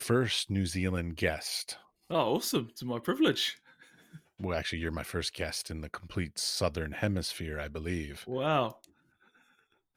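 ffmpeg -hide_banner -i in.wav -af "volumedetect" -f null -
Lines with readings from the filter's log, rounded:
mean_volume: -33.4 dB
max_volume: -12.1 dB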